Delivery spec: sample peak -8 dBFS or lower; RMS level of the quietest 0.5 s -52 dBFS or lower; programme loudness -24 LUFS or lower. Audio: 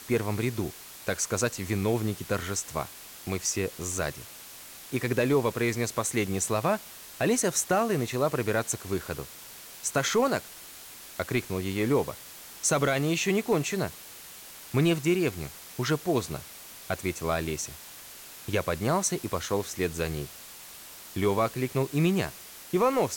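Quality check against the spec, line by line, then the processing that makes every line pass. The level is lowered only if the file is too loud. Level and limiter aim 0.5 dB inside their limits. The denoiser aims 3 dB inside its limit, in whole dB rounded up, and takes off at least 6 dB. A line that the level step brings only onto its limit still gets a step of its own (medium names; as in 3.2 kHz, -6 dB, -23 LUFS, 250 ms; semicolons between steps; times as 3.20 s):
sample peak -14.5 dBFS: pass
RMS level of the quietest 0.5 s -46 dBFS: fail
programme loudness -28.5 LUFS: pass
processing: noise reduction 9 dB, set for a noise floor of -46 dBFS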